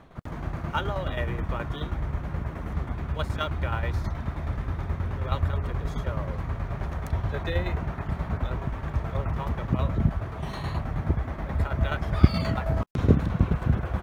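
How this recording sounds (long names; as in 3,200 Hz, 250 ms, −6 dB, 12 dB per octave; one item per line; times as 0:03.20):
tremolo saw down 9.4 Hz, depth 60%
IMA ADPCM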